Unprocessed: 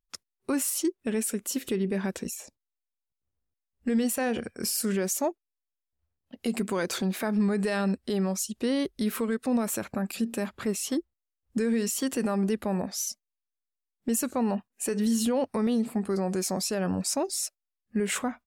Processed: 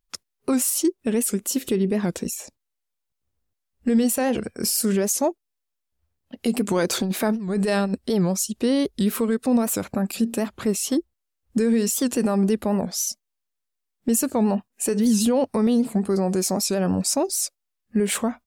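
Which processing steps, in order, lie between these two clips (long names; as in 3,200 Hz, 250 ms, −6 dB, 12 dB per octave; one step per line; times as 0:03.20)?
dynamic equaliser 1,800 Hz, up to −5 dB, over −49 dBFS, Q 0.93
0:06.66–0:07.99: compressor whose output falls as the input rises −28 dBFS, ratio −0.5
wow of a warped record 78 rpm, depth 160 cents
level +6.5 dB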